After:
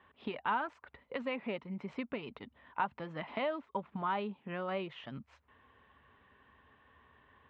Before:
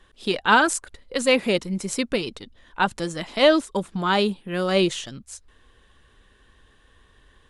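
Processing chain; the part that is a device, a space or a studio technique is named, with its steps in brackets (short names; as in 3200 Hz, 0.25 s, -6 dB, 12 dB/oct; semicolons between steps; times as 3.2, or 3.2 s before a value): bass amplifier (compressor 4:1, threshold -31 dBFS, peak gain reduction 16.5 dB; speaker cabinet 85–2400 Hz, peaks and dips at 110 Hz -8 dB, 180 Hz -6 dB, 340 Hz -9 dB, 500 Hz -5 dB, 950 Hz +4 dB, 1600 Hz -5 dB); gain -1.5 dB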